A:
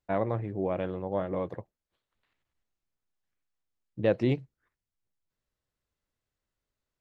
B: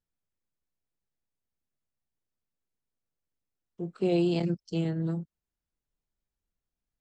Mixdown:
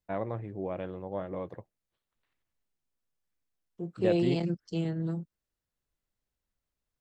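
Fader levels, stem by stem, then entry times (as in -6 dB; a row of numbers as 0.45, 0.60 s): -5.0, -2.0 dB; 0.00, 0.00 s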